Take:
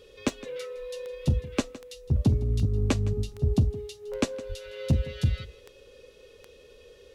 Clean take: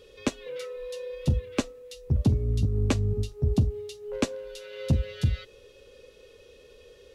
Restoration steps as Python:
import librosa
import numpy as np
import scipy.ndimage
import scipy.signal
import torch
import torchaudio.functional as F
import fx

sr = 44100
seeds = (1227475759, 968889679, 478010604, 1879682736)

y = fx.fix_declick_ar(x, sr, threshold=10.0)
y = fx.fix_deplosive(y, sr, at_s=(4.48,))
y = fx.fix_echo_inverse(y, sr, delay_ms=162, level_db=-18.0)